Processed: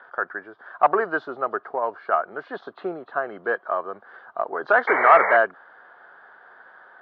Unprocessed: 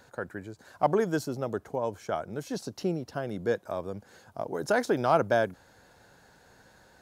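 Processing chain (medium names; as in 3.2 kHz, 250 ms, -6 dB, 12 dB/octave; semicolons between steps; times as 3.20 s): knee-point frequency compression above 2.3 kHz 1.5:1; cabinet simulation 280–3300 Hz, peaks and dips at 390 Hz +6 dB, 690 Hz +7 dB, 1.2 kHz +8 dB, 1.7 kHz +5 dB, 2.5 kHz -7 dB; saturation -9 dBFS, distortion -21 dB; peaking EQ 1.3 kHz +15 dB 1.8 oct; painted sound noise, 4.87–5.37 s, 410–2300 Hz -17 dBFS; trim -5 dB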